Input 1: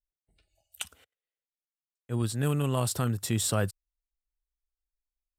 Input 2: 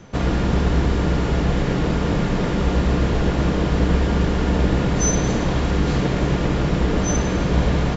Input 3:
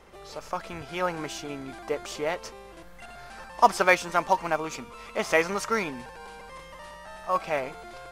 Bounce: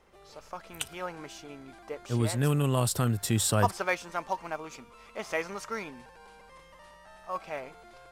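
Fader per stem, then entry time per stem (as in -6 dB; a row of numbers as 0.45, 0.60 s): +1.5 dB, off, -9.0 dB; 0.00 s, off, 0.00 s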